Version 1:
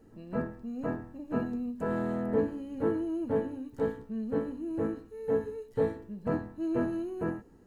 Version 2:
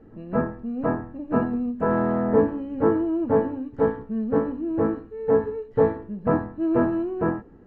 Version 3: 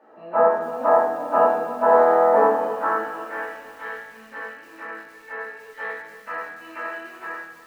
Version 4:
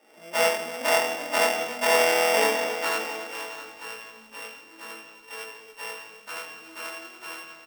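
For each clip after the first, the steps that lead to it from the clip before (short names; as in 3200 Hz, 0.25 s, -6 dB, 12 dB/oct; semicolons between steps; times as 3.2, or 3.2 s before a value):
dynamic EQ 1000 Hz, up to +7 dB, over -49 dBFS, Q 1.5; LPF 2000 Hz 12 dB/oct; notch 940 Hz, Q 15; gain +8 dB
high-pass sweep 780 Hz -> 2100 Hz, 2.32–3.44; shoebox room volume 380 m³, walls mixed, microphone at 2.6 m; lo-fi delay 0.29 s, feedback 55%, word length 7-bit, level -14 dB
sample sorter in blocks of 16 samples; echo 0.665 s -14 dB; gain -5.5 dB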